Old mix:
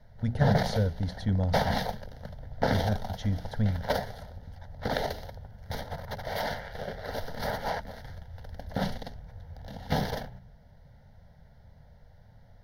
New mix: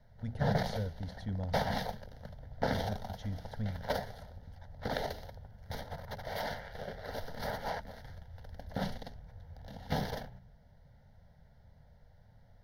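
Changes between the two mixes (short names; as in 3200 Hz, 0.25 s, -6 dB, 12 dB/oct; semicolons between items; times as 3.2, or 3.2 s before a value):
speech -10.0 dB; background -5.5 dB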